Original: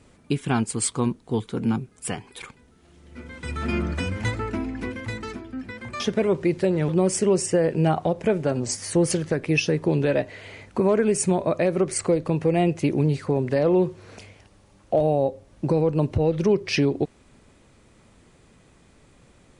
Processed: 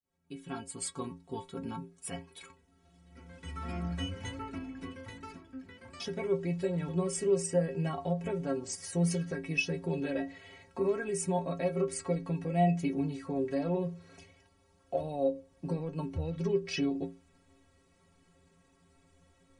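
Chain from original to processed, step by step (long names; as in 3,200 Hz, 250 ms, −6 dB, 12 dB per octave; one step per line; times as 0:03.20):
fade in at the beginning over 0.97 s
stiff-string resonator 81 Hz, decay 0.43 s, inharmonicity 0.03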